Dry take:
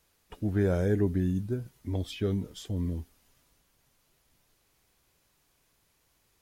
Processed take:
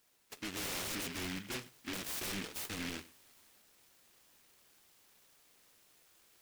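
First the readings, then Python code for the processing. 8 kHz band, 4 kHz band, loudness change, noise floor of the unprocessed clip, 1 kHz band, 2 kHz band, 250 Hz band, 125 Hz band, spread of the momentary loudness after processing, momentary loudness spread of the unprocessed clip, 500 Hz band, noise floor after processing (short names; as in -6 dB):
+10.5 dB, +5.5 dB, -9.0 dB, -71 dBFS, 0.0 dB, +3.0 dB, -14.0 dB, -21.0 dB, 8 LU, 9 LU, -16.5 dB, -67 dBFS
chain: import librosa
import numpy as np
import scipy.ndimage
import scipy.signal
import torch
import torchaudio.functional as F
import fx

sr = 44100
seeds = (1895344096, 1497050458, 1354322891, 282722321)

p1 = scipy.signal.sosfilt(scipy.signal.butter(2, 420.0, 'highpass', fs=sr, output='sos'), x)
p2 = fx.rider(p1, sr, range_db=3, speed_s=2.0)
p3 = 10.0 ** (-37.5 / 20.0) * (np.abs((p2 / 10.0 ** (-37.5 / 20.0) + 3.0) % 4.0 - 2.0) - 1.0)
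p4 = p3 + fx.echo_single(p3, sr, ms=96, db=-19.0, dry=0)
p5 = fx.noise_mod_delay(p4, sr, seeds[0], noise_hz=2200.0, depth_ms=0.42)
y = p5 * librosa.db_to_amplitude(3.0)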